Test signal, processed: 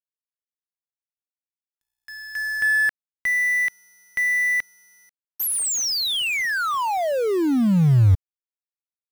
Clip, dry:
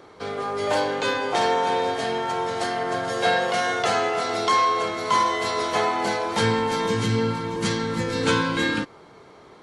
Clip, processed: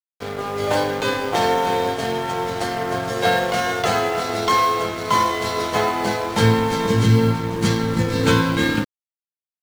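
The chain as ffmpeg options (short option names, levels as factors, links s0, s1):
-af "acrusher=bits=6:mode=log:mix=0:aa=0.000001,lowshelf=f=190:g=11,aeval=exprs='sgn(val(0))*max(abs(val(0))-0.0188,0)':c=same,volume=1.41"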